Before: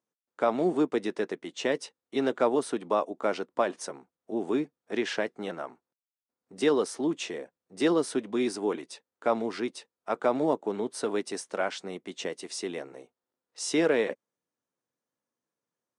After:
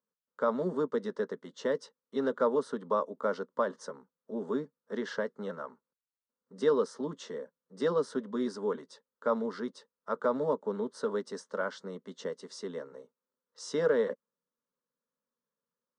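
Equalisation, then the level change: air absorption 120 m; fixed phaser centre 490 Hz, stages 8; 0.0 dB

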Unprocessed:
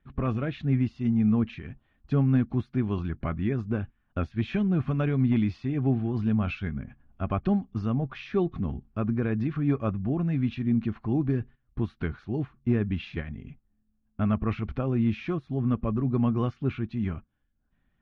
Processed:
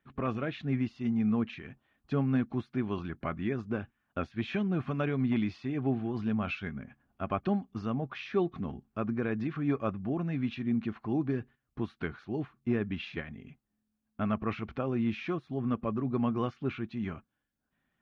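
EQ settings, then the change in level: HPF 320 Hz 6 dB/oct; 0.0 dB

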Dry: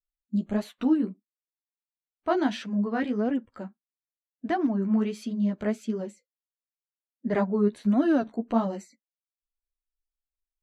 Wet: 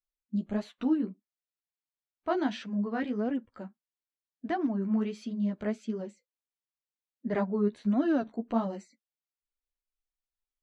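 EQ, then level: air absorption 100 m; high shelf 5400 Hz +7.5 dB; -4.0 dB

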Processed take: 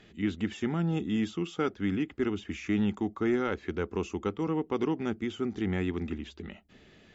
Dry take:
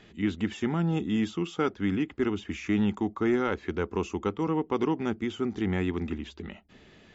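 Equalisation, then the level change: bell 970 Hz -4 dB 0.46 oct; -2.0 dB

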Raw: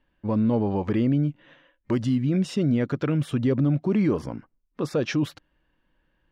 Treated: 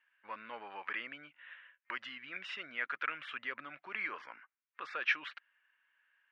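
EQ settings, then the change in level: Butterworth band-pass 1900 Hz, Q 1.4; +4.0 dB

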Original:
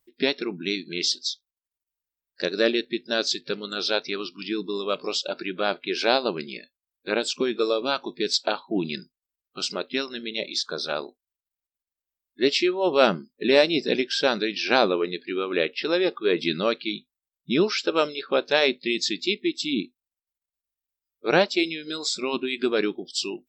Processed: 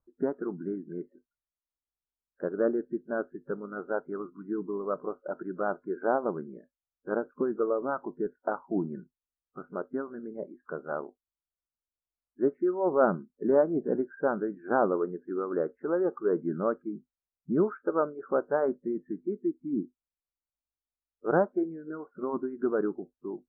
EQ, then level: steep low-pass 1500 Hz 72 dB/oct; low shelf 110 Hz +6.5 dB; -4.5 dB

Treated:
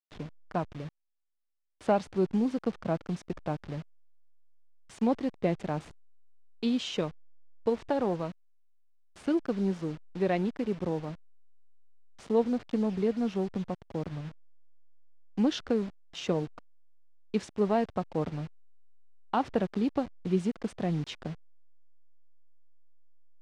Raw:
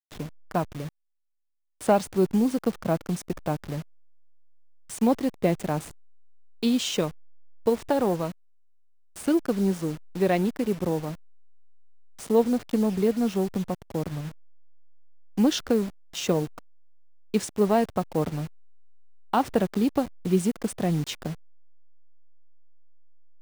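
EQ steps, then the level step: LPF 4400 Hz 12 dB/oct; -5.0 dB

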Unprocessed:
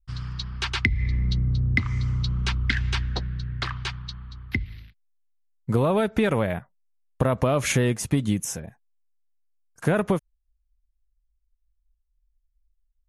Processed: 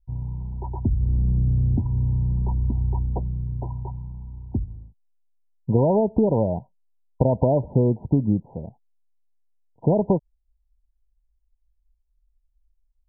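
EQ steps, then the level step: brick-wall FIR low-pass 1000 Hz; +3.0 dB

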